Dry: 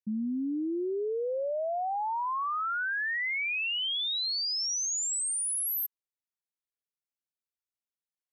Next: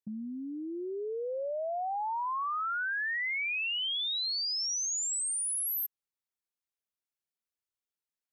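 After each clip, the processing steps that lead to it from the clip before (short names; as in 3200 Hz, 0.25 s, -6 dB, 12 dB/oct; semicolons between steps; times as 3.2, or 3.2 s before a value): dynamic EQ 260 Hz, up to -6 dB, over -44 dBFS, Q 0.99; gain -1.5 dB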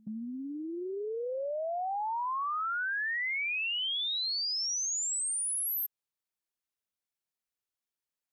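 pre-echo 94 ms -23 dB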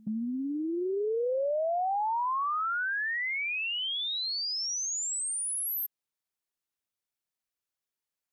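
vocal rider within 4 dB; gain +2 dB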